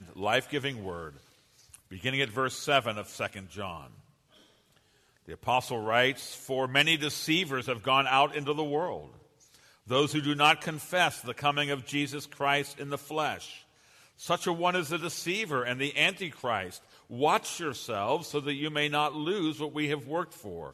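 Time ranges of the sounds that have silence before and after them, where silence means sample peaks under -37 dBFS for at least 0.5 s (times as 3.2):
1.74–3.85
5.29–9.05
9.9–13.56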